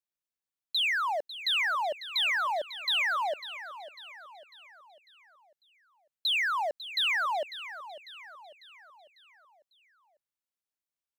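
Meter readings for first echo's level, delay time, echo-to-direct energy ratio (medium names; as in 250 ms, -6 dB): -14.0 dB, 548 ms, -13.0 dB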